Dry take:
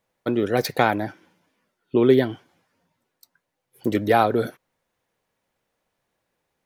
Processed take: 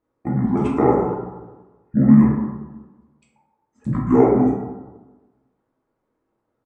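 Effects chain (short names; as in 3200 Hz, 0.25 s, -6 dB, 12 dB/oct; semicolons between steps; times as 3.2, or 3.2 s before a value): tone controls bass -4 dB, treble -15 dB; pitch shift -10 st; plate-style reverb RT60 1.2 s, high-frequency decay 0.35×, DRR -4 dB; gain -2 dB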